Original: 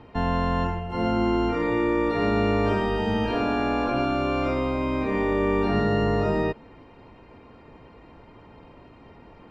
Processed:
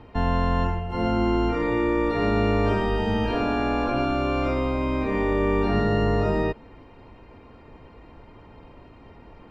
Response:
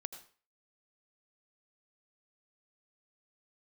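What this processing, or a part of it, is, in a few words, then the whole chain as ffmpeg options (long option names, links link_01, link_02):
low shelf boost with a cut just above: -af "lowshelf=frequency=80:gain=7.5,equalizer=frequency=160:width_type=o:width=0.77:gain=-2"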